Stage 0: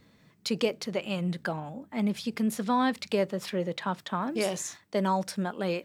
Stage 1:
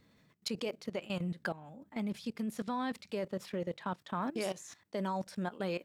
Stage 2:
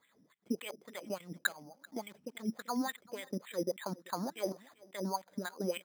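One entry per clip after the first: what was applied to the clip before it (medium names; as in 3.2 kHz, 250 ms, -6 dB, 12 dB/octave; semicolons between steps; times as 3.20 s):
level held to a coarse grid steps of 16 dB; trim -2.5 dB
wah-wah 3.5 Hz 240–2400 Hz, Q 3.3; delay 387 ms -23 dB; careless resampling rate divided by 8×, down filtered, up hold; trim +8.5 dB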